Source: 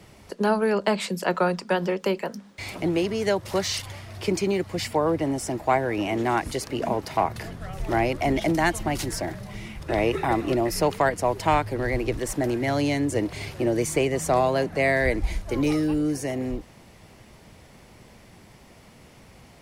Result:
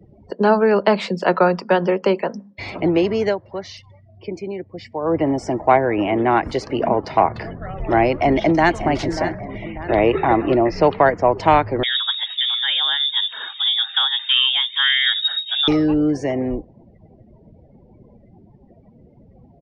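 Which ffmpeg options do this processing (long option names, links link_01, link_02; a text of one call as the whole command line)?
ffmpeg -i in.wav -filter_complex "[0:a]asettb=1/sr,asplit=3[link_01][link_02][link_03];[link_01]atrim=end=5.744[link_04];[link_02]atrim=start=5.74:end=6.43,asetpts=PTS-STARTPTS,afade=type=in:duration=0.004:curve=qsin,afade=type=out:start_time=0.686:duration=0.004:curve=qsin,adynamicsmooth=sensitivity=4.5:basefreq=4100[link_05];[link_03]atrim=start=6.426[link_06];[link_04][link_05]acrossfade=duration=0.004:curve1=hsin:curve2=qsin[link_07];[link_07][link_06]acrossfade=duration=0.004:curve1=qsin:curve2=hsin,asplit=2[link_08][link_09];[link_09]afade=type=in:start_time=8.09:duration=0.01,afade=type=out:start_time=8.73:duration=0.01,aecho=0:1:590|1180|1770|2360|2950:0.281838|0.126827|0.0570723|0.0256825|0.0115571[link_10];[link_08][link_10]amix=inputs=2:normalize=0,asettb=1/sr,asplit=3[link_11][link_12][link_13];[link_11]atrim=end=9.644[link_14];[link_12]atrim=start=9.64:end=11.31,asetpts=PTS-STARTPTS,afade=type=in:duration=0.004:curve=qsin,afade=type=out:start_time=1.666:duration=0.004:curve=qsin,lowpass=4600[link_15];[link_13]atrim=start=11.306[link_16];[link_14][link_15]acrossfade=duration=0.004:curve1=hsin:curve2=qsin[link_17];[link_17][link_16]acrossfade=duration=0.004:curve1=qsin:curve2=hsin,asettb=1/sr,asplit=3[link_18][link_19][link_20];[link_18]atrim=end=11.834[link_21];[link_19]atrim=start=11.83:end=15.68,asetpts=PTS-STARTPTS,afade=type=in:duration=0.004:curve=qsin,afade=type=out:start_time=3.846:duration=0.004:curve=qsin,lowpass=frequency=3200:width_type=q:width=0.5098,lowpass=frequency=3200:width_type=q:width=0.6013,lowpass=frequency=3200:width_type=q:width=0.9,lowpass=frequency=3200:width_type=q:width=2.563,afreqshift=-3800[link_22];[link_20]atrim=start=15.676[link_23];[link_21][link_22]acrossfade=duration=0.004:curve1=hsin:curve2=qsin[link_24];[link_24][link_23]acrossfade=duration=0.004:curve1=qsin:curve2=hsin,asplit=3[link_25][link_26][link_27];[link_25]atrim=end=3.38,asetpts=PTS-STARTPTS,afade=type=out:start_time=3.22:duration=0.16:silence=0.281838[link_28];[link_26]atrim=start=3.38:end=5.01,asetpts=PTS-STARTPTS,volume=-11dB[link_29];[link_27]atrim=start=5.01,asetpts=PTS-STARTPTS,afade=type=in:duration=0.16:silence=0.281838[link_30];[link_28][link_29][link_30]concat=n=3:v=0:a=1,afftdn=noise_reduction=34:noise_floor=-45,lowpass=frequency=5700:width=0.5412,lowpass=frequency=5700:width=1.3066,equalizer=frequency=600:width=0.36:gain=5.5,volume=2.5dB" out.wav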